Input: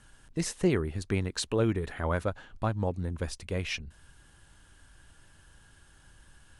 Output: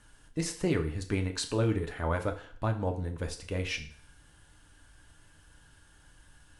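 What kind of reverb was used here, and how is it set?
FDN reverb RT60 0.53 s, low-frequency decay 0.75×, high-frequency decay 0.95×, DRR 4.5 dB; trim -2 dB

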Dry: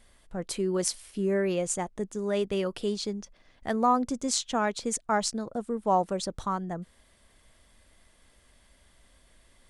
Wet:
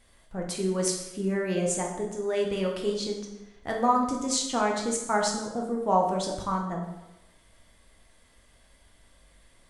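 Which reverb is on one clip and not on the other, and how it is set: plate-style reverb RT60 0.97 s, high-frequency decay 0.75×, DRR -0.5 dB; trim -1.5 dB

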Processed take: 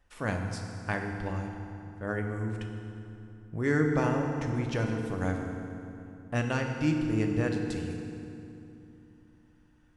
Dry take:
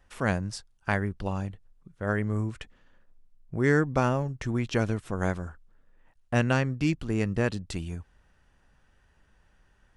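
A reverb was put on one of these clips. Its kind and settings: FDN reverb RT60 2.9 s, low-frequency decay 1.35×, high-frequency decay 0.7×, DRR 2 dB; trim -5.5 dB

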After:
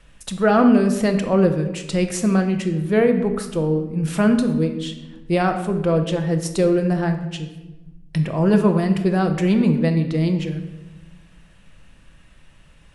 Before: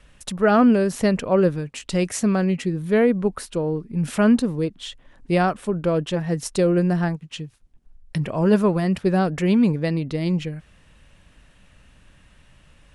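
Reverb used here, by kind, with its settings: simulated room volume 560 m³, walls mixed, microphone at 0.72 m

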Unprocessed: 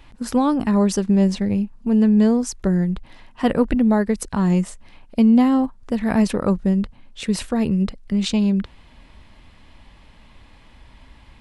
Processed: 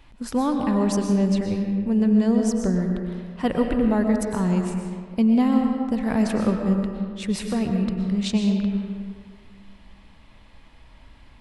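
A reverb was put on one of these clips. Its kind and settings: algorithmic reverb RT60 1.9 s, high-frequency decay 0.55×, pre-delay 80 ms, DRR 3 dB; trim -4.5 dB

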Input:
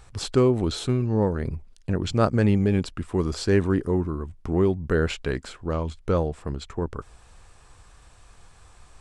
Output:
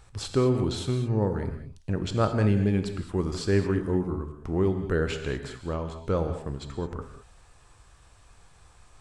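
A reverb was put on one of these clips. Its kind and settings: gated-style reverb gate 240 ms flat, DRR 6.5 dB; trim -4 dB

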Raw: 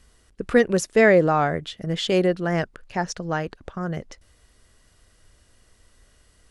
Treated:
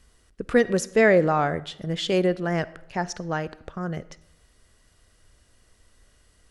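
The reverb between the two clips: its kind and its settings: algorithmic reverb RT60 0.84 s, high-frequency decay 0.7×, pre-delay 10 ms, DRR 18 dB; trim -2 dB

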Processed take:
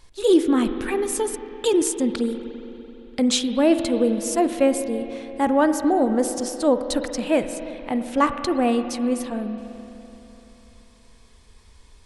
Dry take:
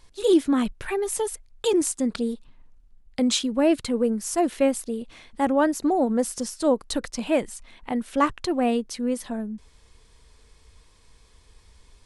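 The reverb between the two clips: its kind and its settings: spring tank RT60 3.4 s, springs 42/48 ms, chirp 80 ms, DRR 8.5 dB; trim +2 dB

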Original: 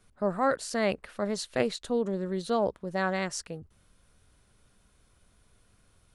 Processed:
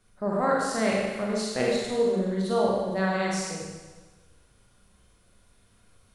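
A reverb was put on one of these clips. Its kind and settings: Schroeder reverb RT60 1.3 s, combs from 32 ms, DRR -4 dB; trim -2 dB

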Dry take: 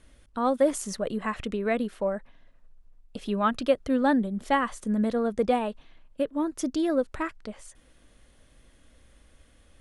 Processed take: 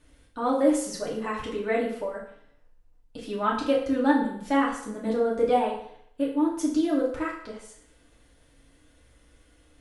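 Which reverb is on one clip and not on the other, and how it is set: FDN reverb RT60 0.68 s, low-frequency decay 0.75×, high-frequency decay 0.85×, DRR -5.5 dB; trim -6 dB

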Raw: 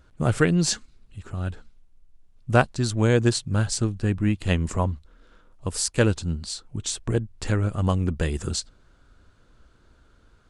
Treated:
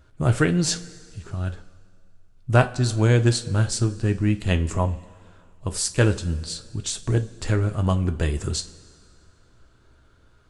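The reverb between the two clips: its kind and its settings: two-slope reverb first 0.25 s, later 2.1 s, from -18 dB, DRR 7.5 dB

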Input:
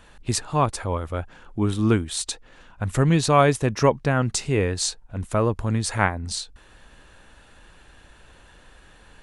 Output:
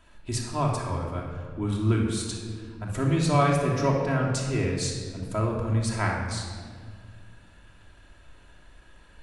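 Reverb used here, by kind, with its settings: simulated room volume 2500 m³, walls mixed, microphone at 2.9 m; trim -9.5 dB

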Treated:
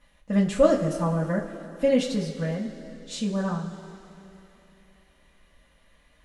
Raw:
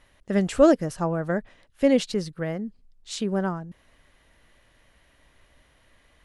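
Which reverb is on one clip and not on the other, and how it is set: two-slope reverb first 0.22 s, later 3 s, from -18 dB, DRR -5.5 dB; trim -8 dB

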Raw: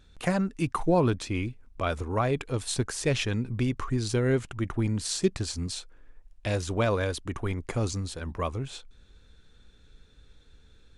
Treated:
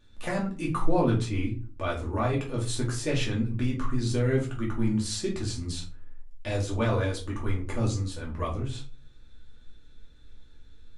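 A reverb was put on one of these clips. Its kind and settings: simulated room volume 190 m³, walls furnished, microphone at 2.5 m; trim -6.5 dB

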